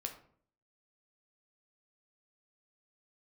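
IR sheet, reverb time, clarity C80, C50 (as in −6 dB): 0.55 s, 13.5 dB, 10.0 dB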